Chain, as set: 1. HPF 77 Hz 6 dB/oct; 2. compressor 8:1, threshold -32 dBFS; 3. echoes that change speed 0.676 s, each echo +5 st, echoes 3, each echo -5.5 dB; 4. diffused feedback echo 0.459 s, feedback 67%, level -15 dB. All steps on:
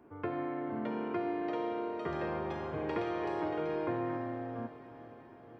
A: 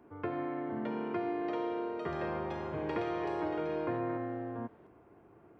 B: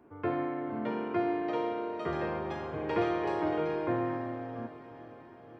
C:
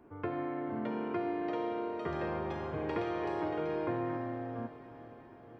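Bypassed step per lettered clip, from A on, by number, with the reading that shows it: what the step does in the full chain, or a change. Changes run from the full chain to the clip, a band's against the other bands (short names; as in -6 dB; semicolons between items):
4, echo-to-direct -12.5 dB to none; 2, mean gain reduction 2.0 dB; 1, 125 Hz band +1.5 dB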